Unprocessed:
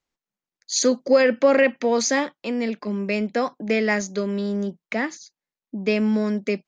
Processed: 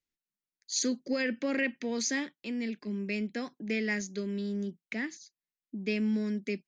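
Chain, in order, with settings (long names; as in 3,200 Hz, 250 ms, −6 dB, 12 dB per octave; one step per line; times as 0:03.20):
flat-topped bell 810 Hz −11 dB
level −8 dB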